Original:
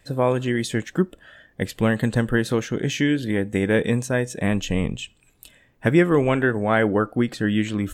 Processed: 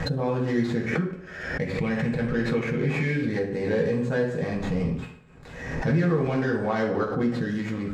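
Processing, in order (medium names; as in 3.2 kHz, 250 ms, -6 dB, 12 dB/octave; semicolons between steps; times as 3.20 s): median filter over 15 samples; 0.85–3.23 s: peaking EQ 2.3 kHz +14.5 dB 0.28 oct; peak limiter -18 dBFS, peak gain reduction 11.5 dB; distance through air 71 m; reverberation RT60 0.75 s, pre-delay 3 ms, DRR -4 dB; swell ahead of each attack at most 52 dB/s; trim -3.5 dB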